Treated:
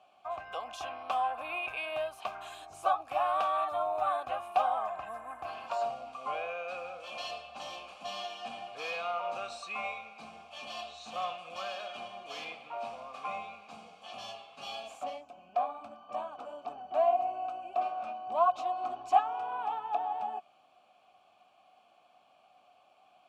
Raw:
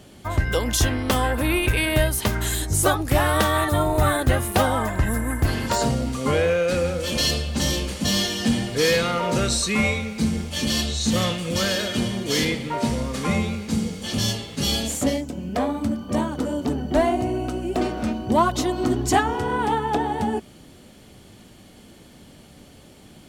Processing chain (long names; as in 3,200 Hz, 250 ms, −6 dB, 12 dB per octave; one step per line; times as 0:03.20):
formant filter a
low shelf with overshoot 590 Hz −8.5 dB, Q 1.5